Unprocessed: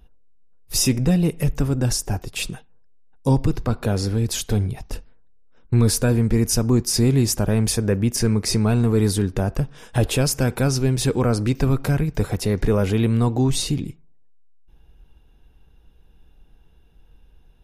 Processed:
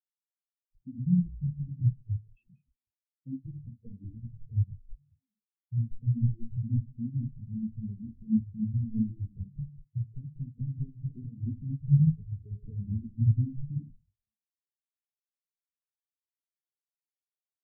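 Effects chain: treble ducked by the level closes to 400 Hz, closed at -16.5 dBFS; HPF 44 Hz 6 dB/oct; bell 260 Hz +2.5 dB 1.3 oct; in parallel at +2.5 dB: limiter -17 dBFS, peak gain reduction 9 dB; on the sum: compressor 5:1, threshold -18 dBFS, peak gain reduction 9 dB; frequency-shifting echo 0.187 s, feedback 48%, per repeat -120 Hz, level -4 dB; on a send at -10.5 dB: reverb RT60 0.45 s, pre-delay 47 ms; on the sum: spectral expander 4:1; gain -6.5 dB

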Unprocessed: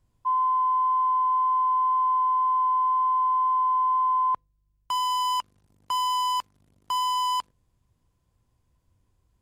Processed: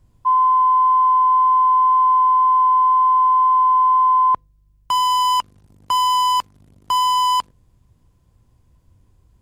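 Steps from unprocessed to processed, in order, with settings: low shelf 450 Hz +6 dB; gain +7.5 dB

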